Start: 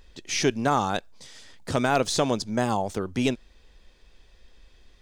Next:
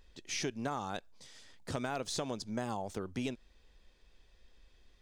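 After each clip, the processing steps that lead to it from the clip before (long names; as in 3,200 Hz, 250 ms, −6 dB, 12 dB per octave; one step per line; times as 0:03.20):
downward compressor, threshold −24 dBFS, peak gain reduction 7.5 dB
level −8.5 dB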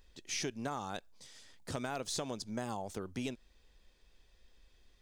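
high-shelf EQ 6,600 Hz +6 dB
level −2 dB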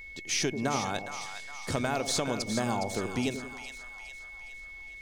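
echo with a time of its own for lows and highs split 810 Hz, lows 90 ms, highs 412 ms, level −8 dB
steady tone 2,200 Hz −51 dBFS
level +8 dB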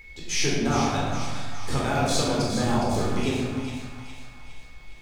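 sub-octave generator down 1 octave, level −4 dB
convolution reverb RT60 1.3 s, pre-delay 14 ms, DRR −5.5 dB
level −3 dB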